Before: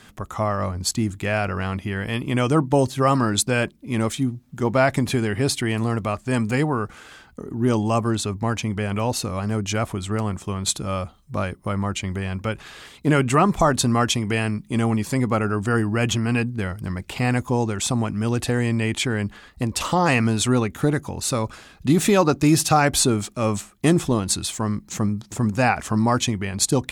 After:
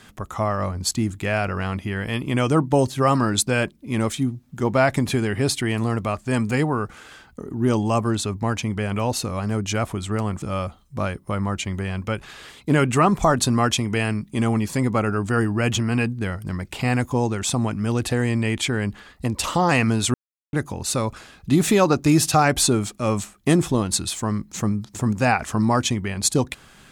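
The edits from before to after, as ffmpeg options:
-filter_complex "[0:a]asplit=4[s0][s1][s2][s3];[s0]atrim=end=10.422[s4];[s1]atrim=start=10.788:end=20.51,asetpts=PTS-STARTPTS,afade=t=out:st=9.718:d=0.004:c=hsin[s5];[s2]atrim=start=20.51:end=20.9,asetpts=PTS-STARTPTS,volume=0[s6];[s3]atrim=start=20.9,asetpts=PTS-STARTPTS,afade=t=in:d=0.004:c=hsin[s7];[s5][s6][s7]concat=n=3:v=0:a=1[s8];[s4][s8]acrossfade=d=0.004:c1=hsin:c2=hsin"

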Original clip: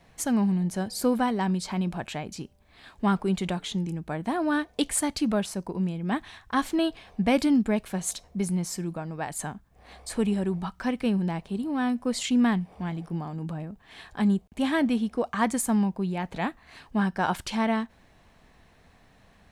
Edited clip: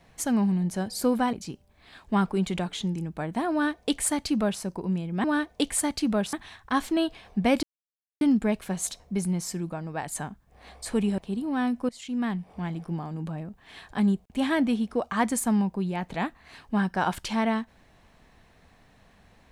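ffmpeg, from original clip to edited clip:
-filter_complex "[0:a]asplit=7[s0][s1][s2][s3][s4][s5][s6];[s0]atrim=end=1.332[s7];[s1]atrim=start=2.238:end=6.152[s8];[s2]atrim=start=4.428:end=5.522[s9];[s3]atrim=start=6.148:end=7.45,asetpts=PTS-STARTPTS,afade=t=out:st=1.298:d=0.004:c=hsin,apad=pad_dur=0.58[s10];[s4]atrim=start=7.45:end=10.422,asetpts=PTS-STARTPTS,afade=t=in:d=0.004:c=hsin[s11];[s5]atrim=start=11.398:end=12.11,asetpts=PTS-STARTPTS,afade=t=out:st=0.708:d=0.004:c=hsin:silence=0.105925[s12];[s6]atrim=start=12.11,asetpts=PTS-STARTPTS,afade=t=in:d=0.77:silence=0.105925[s13];[s7][s8]acrossfade=d=0.004:c1=hsin:c2=hsin[s14];[s14][s9]acrossfade=d=0.004:c1=hsin:c2=hsin[s15];[s10][s11]concat=n=2:v=0:a=1[s16];[s15][s16]acrossfade=d=0.004:c1=hsin:c2=hsin[s17];[s12][s13]concat=n=2:v=0:a=1[s18];[s17][s18]acrossfade=d=0.004:c1=hsin:c2=hsin"

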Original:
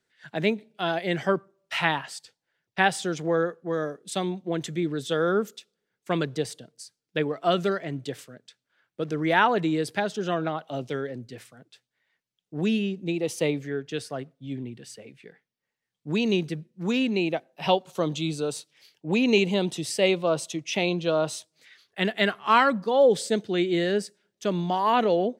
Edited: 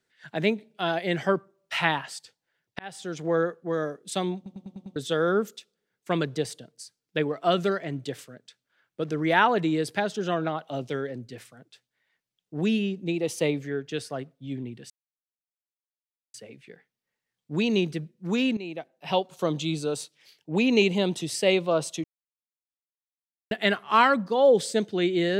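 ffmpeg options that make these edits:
-filter_complex "[0:a]asplit=12[s0][s1][s2][s3][s4][s5][s6][s7][s8][s9][s10][s11];[s0]atrim=end=2.79,asetpts=PTS-STARTPTS,afade=t=out:st=2.786:d=0.004:c=hsin[s12];[s1]atrim=start=2.79:end=4.462,asetpts=PTS-STARTPTS,afade=t=in:d=0.57[s13];[s2]atrim=start=4.358:end=4.462[s14];[s3]atrim=start=4.358:end=4.462[s15];[s4]atrim=start=4.358:end=4.462[s16];[s5]atrim=start=4.358:end=4.462[s17];[s6]atrim=start=4.358:end=4.462[s18];[s7]atrim=start=4.958:end=14.9,asetpts=PTS-STARTPTS,afade=t=out:st=9.938:d=0.004:c=hsin,apad=pad_dur=1.44[s19];[s8]atrim=start=14.9:end=17.13,asetpts=PTS-STARTPTS,afade=t=in:d=0.004:c=hsin,afade=t=out:st=2.226:d=0.004:c=hsin:silence=0.199526[s20];[s9]atrim=start=17.13:end=20.6,asetpts=PTS-STARTPTS,afade=t=in:d=0.89:silence=0.199526,afade=t=out:st=3.466:d=0.004:c=hsin[s21];[s10]atrim=start=20.6:end=22.07,asetpts=PTS-STARTPTS,volume=0[s22];[s11]atrim=start=22.07,asetpts=PTS-STARTPTS,afade=t=in:d=0.004:c=hsin[s23];[s12][s13]concat=n=2:v=0:a=1[s24];[s24][s14]acrossfade=d=0.004:c1=hsin:c2=hsin[s25];[s25][s15]acrossfade=d=0.004:c1=hsin:c2=hsin[s26];[s26][s16]acrossfade=d=0.004:c1=hsin:c2=hsin[s27];[s27][s17]acrossfade=d=0.004:c1=hsin:c2=hsin[s28];[s28][s18]acrossfade=d=0.004:c1=hsin:c2=hsin[s29];[s19][s20][s21][s22][s23]concat=n=5:v=0:a=1[s30];[s29][s30]acrossfade=d=0.004:c1=hsin:c2=hsin"

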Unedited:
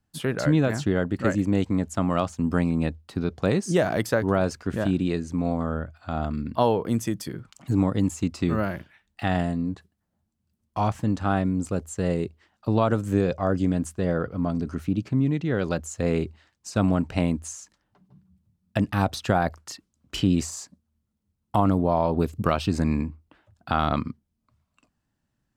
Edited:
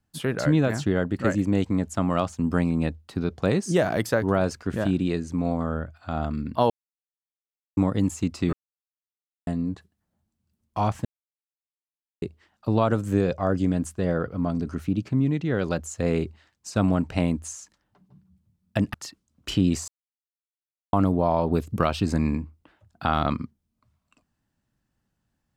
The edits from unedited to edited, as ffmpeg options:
-filter_complex "[0:a]asplit=10[s0][s1][s2][s3][s4][s5][s6][s7][s8][s9];[s0]atrim=end=6.7,asetpts=PTS-STARTPTS,afade=t=out:st=6.696:d=0.004:c=hsin[s10];[s1]atrim=start=6.7:end=7.77,asetpts=PTS-STARTPTS,volume=0[s11];[s2]atrim=start=7.77:end=8.53,asetpts=PTS-STARTPTS,afade=t=in:d=0.004:c=hsin,afade=t=out:st=0.756:d=0.004:c=hsin[s12];[s3]atrim=start=8.53:end=9.47,asetpts=PTS-STARTPTS,volume=0[s13];[s4]atrim=start=9.47:end=11.05,asetpts=PTS-STARTPTS,afade=t=in:d=0.004:c=hsin,afade=t=out:st=1.576:d=0.004:c=hsin[s14];[s5]atrim=start=11.05:end=12.22,asetpts=PTS-STARTPTS,volume=0[s15];[s6]atrim=start=12.22:end=18.942,asetpts=PTS-STARTPTS,afade=t=in:d=0.004:c=hsin[s16];[s7]atrim=start=19.598:end=20.54,asetpts=PTS-STARTPTS,afade=t=out:st=0.938:d=0.004:c=hsin[s17];[s8]atrim=start=20.54:end=21.59,asetpts=PTS-STARTPTS,volume=0[s18];[s9]atrim=start=21.59,asetpts=PTS-STARTPTS,afade=t=in:d=0.004:c=hsin[s19];[s10][s11][s12][s13][s14][s15][s16]concat=n=7:v=0:a=1[s20];[s17][s18][s19]concat=n=3:v=0:a=1[s21];[s20][s21]acrossfade=d=0.004:c1=hsin:c2=hsin"

